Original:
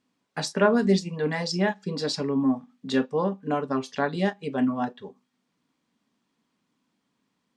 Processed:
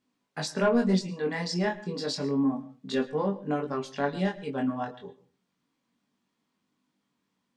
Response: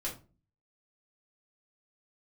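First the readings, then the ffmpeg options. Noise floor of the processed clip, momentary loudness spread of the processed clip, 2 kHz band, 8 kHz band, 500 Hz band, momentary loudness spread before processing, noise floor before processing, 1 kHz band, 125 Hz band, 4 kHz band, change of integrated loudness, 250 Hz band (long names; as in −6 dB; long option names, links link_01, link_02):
−80 dBFS, 11 LU, −4.0 dB, −3.0 dB, −3.0 dB, 9 LU, −77 dBFS, −4.0 dB, −2.5 dB, −3.0 dB, −3.0 dB, −3.0 dB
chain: -filter_complex "[0:a]asoftclip=type=tanh:threshold=-11dB,flanger=delay=20:depth=2.6:speed=0.3,asplit=2[link_01][link_02];[1:a]atrim=start_sample=2205,adelay=106[link_03];[link_02][link_03]afir=irnorm=-1:irlink=0,volume=-19.5dB[link_04];[link_01][link_04]amix=inputs=2:normalize=0"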